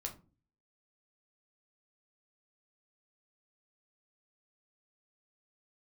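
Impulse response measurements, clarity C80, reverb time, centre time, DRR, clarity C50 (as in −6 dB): 19.0 dB, 0.35 s, 12 ms, 2.0 dB, 13.0 dB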